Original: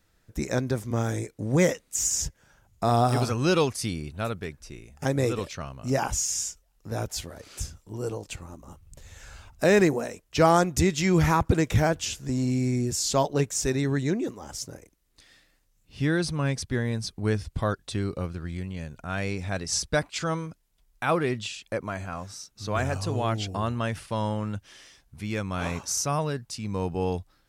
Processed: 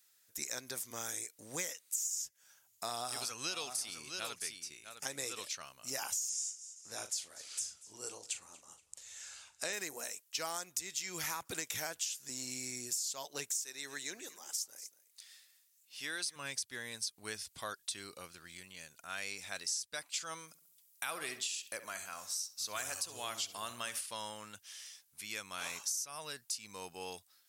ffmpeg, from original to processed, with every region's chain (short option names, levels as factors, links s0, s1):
-filter_complex "[0:a]asettb=1/sr,asplit=3[s0][s1][s2];[s0]atrim=end=2.854[s3];[s1]atrim=start=2.85:end=5.61,asetpts=PTS-STARTPTS,afade=t=in:d=0.004:c=qsin,afade=t=out:st=2.756:d=0.004:c=qsin,lowpass=11000,aecho=1:1:658:0.299,atrim=end_sample=121716[s4];[s2]atrim=start=5.606[s5];[s3][s4]acrossfade=d=0.004:c1=hsin:c2=qsin[s6];[s6][s5]acrossfade=d=0.004:c1=qsin:c2=hsin,asettb=1/sr,asplit=3[s7][s8][s9];[s7]atrim=end=6.294[s10];[s8]atrim=start=6.29:end=9.73,asetpts=PTS-STARTPTS,afade=t=in:d=0.004:c=qsin,afade=t=out:st=3.436:d=0.004:c=qsin,lowpass=f=9600:w=0.5412,lowpass=f=9600:w=1.3066,asplit=2[s11][s12];[s12]adelay=39,volume=0.299[s13];[s11][s13]amix=inputs=2:normalize=0,atrim=end_sample=151704,aecho=1:1:235|470|705:0.075|0.0292|0.0114,atrim=end_sample=151704[s14];[s9]atrim=start=9.726[s15];[s10][s14]acrossfade=d=0.004:c1=hsin:c2=qsin[s16];[s16][s15]acrossfade=d=0.004:c1=qsin:c2=hsin,asettb=1/sr,asplit=3[s17][s18][s19];[s17]atrim=end=13.644[s20];[s18]atrim=start=13.64:end=16.36,asetpts=PTS-STARTPTS,afade=t=in:d=0.004:c=qsin,afade=t=out:st=2.716:d=0.004:c=qsin,highpass=f=380:p=1,aecho=1:1:238:0.119,atrim=end_sample=119952[s21];[s19]atrim=start=16.356[s22];[s20][s21]acrossfade=d=0.004:c1=hsin:c2=qsin[s23];[s23][s22]acrossfade=d=0.004:c1=qsin:c2=hsin,asettb=1/sr,asplit=3[s24][s25][s26];[s24]atrim=end=20.484[s27];[s25]atrim=start=20.48:end=24.01,asetpts=PTS-STARTPTS,afade=t=in:d=0.004:c=qsin,afade=t=out:st=3.526:d=0.004:c=qsin,highshelf=f=6300:g=6.5,asplit=2[s28][s29];[s29]adelay=67,lowpass=f=2600:p=1,volume=0.251,asplit=2[s30][s31];[s31]adelay=67,lowpass=f=2600:p=1,volume=0.5,asplit=2[s32][s33];[s33]adelay=67,lowpass=f=2600:p=1,volume=0.5,asplit=2[s34][s35];[s35]adelay=67,lowpass=f=2600:p=1,volume=0.5,asplit=2[s36][s37];[s37]adelay=67,lowpass=f=2600:p=1,volume=0.5[s38];[s28][s30][s32][s34][s36][s38]amix=inputs=6:normalize=0,atrim=end_sample=155673[s39];[s26]atrim=start=24.006[s40];[s27][s39]acrossfade=d=0.004:c1=hsin:c2=qsin[s41];[s41][s40]acrossfade=d=0.004:c1=qsin:c2=hsin,aderivative,acompressor=threshold=0.01:ratio=10,volume=1.88"